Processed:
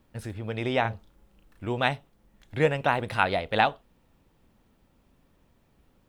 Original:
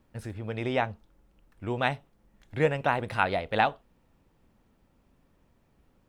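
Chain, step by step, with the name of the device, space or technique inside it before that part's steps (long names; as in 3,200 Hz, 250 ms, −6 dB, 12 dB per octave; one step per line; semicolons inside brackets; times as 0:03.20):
0:00.81–0:01.67: double-tracking delay 35 ms −3 dB
presence and air boost (parametric band 3,500 Hz +3 dB; high-shelf EQ 9,400 Hz +4.5 dB)
level +1.5 dB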